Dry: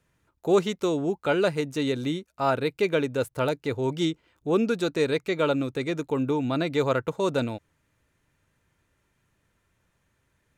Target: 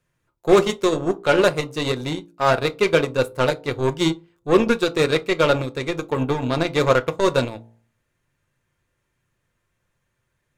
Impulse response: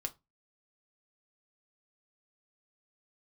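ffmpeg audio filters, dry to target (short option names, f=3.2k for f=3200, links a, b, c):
-filter_complex "[0:a]bandreject=f=57.05:t=h:w=4,bandreject=f=114.1:t=h:w=4,bandreject=f=171.15:t=h:w=4,bandreject=f=228.2:t=h:w=4,bandreject=f=285.25:t=h:w=4,bandreject=f=342.3:t=h:w=4,bandreject=f=399.35:t=h:w=4,bandreject=f=456.4:t=h:w=4,bandreject=f=513.45:t=h:w=4,bandreject=f=570.5:t=h:w=4,bandreject=f=627.55:t=h:w=4,bandreject=f=684.6:t=h:w=4,bandreject=f=741.65:t=h:w=4,bandreject=f=798.7:t=h:w=4,bandreject=f=855.75:t=h:w=4,bandreject=f=912.8:t=h:w=4,bandreject=f=969.85:t=h:w=4,aeval=exprs='0.266*(cos(1*acos(clip(val(0)/0.266,-1,1)))-cos(1*PI/2))+0.00668*(cos(5*acos(clip(val(0)/0.266,-1,1)))-cos(5*PI/2))+0.0299*(cos(7*acos(clip(val(0)/0.266,-1,1)))-cos(7*PI/2))':c=same,asplit=2[a][b];[1:a]atrim=start_sample=2205[c];[b][c]afir=irnorm=-1:irlink=0,volume=3.5dB[d];[a][d]amix=inputs=2:normalize=0"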